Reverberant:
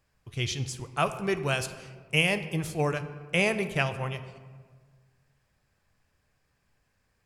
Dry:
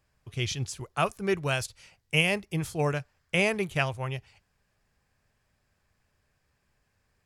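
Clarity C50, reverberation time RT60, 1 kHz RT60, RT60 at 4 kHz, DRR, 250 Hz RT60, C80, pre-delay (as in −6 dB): 12.0 dB, 1.6 s, 1.5 s, 0.85 s, 9.5 dB, 1.8 s, 13.0 dB, 4 ms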